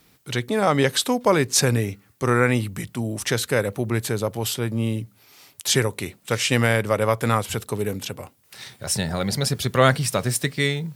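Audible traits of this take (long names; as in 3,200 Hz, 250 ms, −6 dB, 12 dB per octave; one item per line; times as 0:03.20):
background noise floor −58 dBFS
spectral slope −4.0 dB per octave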